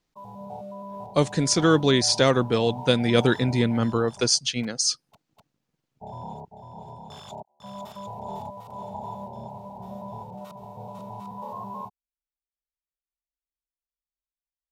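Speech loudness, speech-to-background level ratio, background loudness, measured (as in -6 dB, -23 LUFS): -22.0 LUFS, 17.5 dB, -39.5 LUFS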